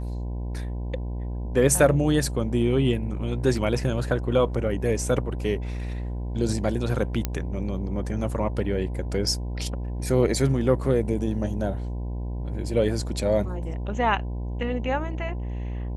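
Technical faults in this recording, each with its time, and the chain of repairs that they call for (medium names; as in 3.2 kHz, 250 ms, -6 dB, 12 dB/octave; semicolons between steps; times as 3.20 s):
buzz 60 Hz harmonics 17 -30 dBFS
7.25 s: pop -10 dBFS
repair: de-click; de-hum 60 Hz, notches 17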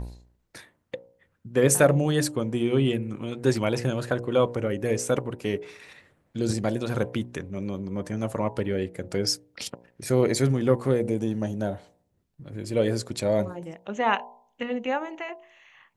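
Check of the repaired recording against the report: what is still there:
7.25 s: pop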